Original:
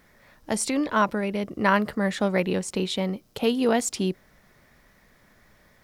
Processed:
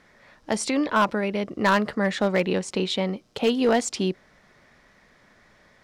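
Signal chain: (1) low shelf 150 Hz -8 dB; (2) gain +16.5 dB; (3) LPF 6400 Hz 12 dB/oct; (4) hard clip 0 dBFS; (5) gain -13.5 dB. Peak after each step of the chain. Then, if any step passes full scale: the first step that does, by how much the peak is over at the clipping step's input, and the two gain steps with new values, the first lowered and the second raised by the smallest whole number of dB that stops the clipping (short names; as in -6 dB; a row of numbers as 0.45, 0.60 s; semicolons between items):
-7.0, +9.5, +9.5, 0.0, -13.5 dBFS; step 2, 9.5 dB; step 2 +6.5 dB, step 5 -3.5 dB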